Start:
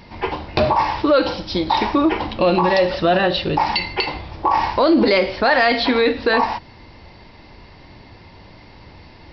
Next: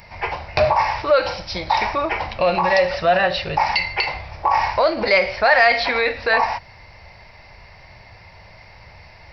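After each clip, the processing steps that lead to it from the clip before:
drawn EQ curve 110 Hz 0 dB, 190 Hz −6 dB, 280 Hz −17 dB, 630 Hz +4 dB, 1,000 Hz 0 dB, 1,600 Hz +3 dB, 2,300 Hz +7 dB, 3,300 Hz −5 dB, 8,400 Hz +13 dB
level −1.5 dB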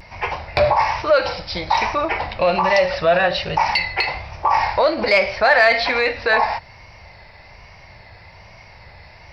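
harmonic generator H 5 −32 dB, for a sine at −1.5 dBFS
pitch vibrato 1.2 Hz 61 cents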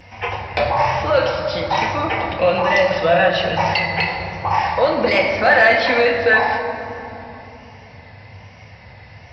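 convolution reverb RT60 3.3 s, pre-delay 3 ms, DRR 1 dB
level −7.5 dB

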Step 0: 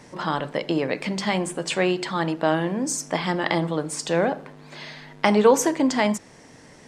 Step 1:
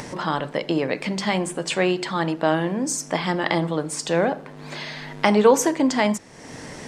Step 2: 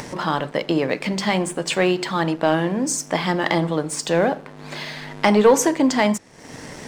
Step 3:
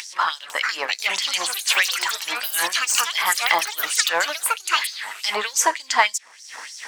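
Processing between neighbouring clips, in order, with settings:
upward compression, threshold −27 dBFS; level +1 dB
leveller curve on the samples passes 1; level −1.5 dB
auto-filter high-pass sine 3.3 Hz 960–5,900 Hz; delay with pitch and tempo change per echo 500 ms, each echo +6 semitones, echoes 3; level +2 dB

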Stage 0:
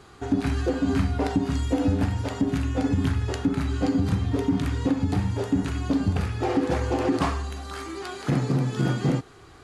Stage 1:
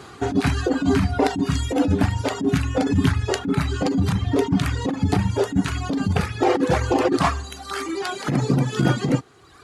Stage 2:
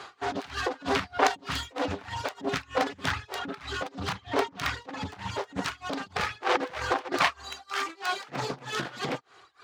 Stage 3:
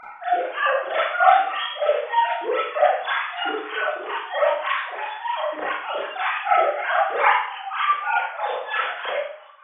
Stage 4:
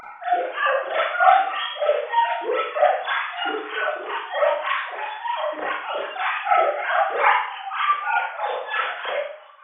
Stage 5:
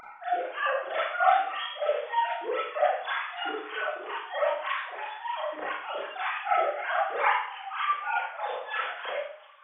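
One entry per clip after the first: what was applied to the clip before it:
high-pass filter 91 Hz 12 dB per octave; reverb reduction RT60 1.4 s; compressor whose output falls as the input rises −25 dBFS, ratio −0.5; level +8 dB
phase distortion by the signal itself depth 0.4 ms; three-way crossover with the lows and the highs turned down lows −18 dB, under 540 Hz, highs −14 dB, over 6,200 Hz; amplitude tremolo 3.2 Hz, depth 95%; level +3 dB
three sine waves on the formant tracks; four-comb reverb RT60 0.6 s, combs from 29 ms, DRR −9.5 dB; level −1 dB
upward compression, threshold −42 dBFS
delay with a high-pass on its return 361 ms, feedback 56%, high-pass 3,200 Hz, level −17 dB; level −7 dB

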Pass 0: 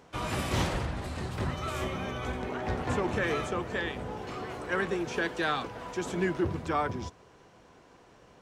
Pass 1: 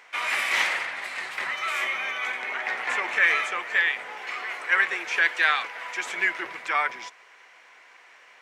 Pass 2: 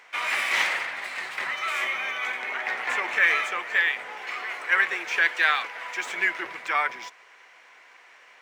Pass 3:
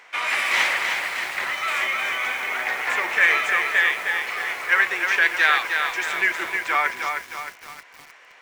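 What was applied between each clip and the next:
high-pass filter 880 Hz 12 dB per octave; parametric band 2,100 Hz +15 dB 0.77 octaves; level +3.5 dB
running median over 3 samples
feedback echo at a low word length 310 ms, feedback 55%, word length 7 bits, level −5 dB; level +3 dB

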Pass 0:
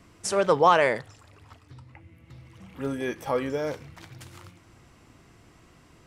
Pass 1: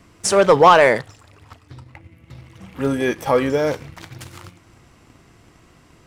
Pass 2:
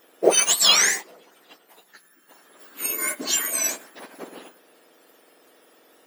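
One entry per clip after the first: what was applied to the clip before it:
leveller curve on the samples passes 1; level +6 dB
frequency axis turned over on the octave scale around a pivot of 1,900 Hz; bit-depth reduction 12 bits, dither none

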